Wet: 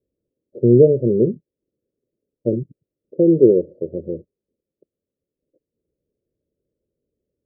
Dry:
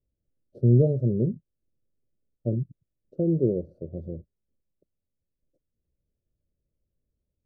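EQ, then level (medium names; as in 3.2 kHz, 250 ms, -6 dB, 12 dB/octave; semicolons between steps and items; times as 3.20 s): high-pass 140 Hz 6 dB/octave; peaking EQ 440 Hz +10.5 dB 1.8 oct; resonant low shelf 690 Hz +12 dB, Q 1.5; -10.5 dB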